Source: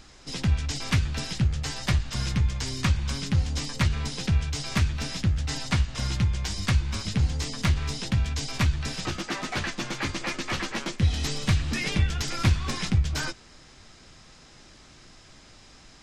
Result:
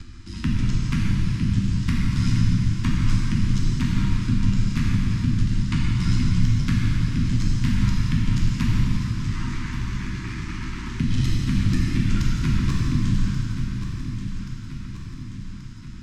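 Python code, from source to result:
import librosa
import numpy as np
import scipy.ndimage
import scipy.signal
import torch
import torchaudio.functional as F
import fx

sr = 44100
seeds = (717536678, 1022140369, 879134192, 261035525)

y = scipy.signal.sosfilt(scipy.signal.cheby1(4, 1.0, [310.0, 960.0], 'bandstop', fs=sr, output='sos'), x)
y = fx.low_shelf(y, sr, hz=440.0, db=10.5)
y = fx.level_steps(y, sr, step_db=20)
y = y * np.sin(2.0 * np.pi * 48.0 * np.arange(len(y)) / sr)
y = fx.echo_feedback(y, sr, ms=1131, feedback_pct=42, wet_db=-13.5)
y = fx.rev_plate(y, sr, seeds[0], rt60_s=2.7, hf_ratio=0.8, predelay_ms=0, drr_db=-5.5)
y = fx.band_squash(y, sr, depth_pct=40)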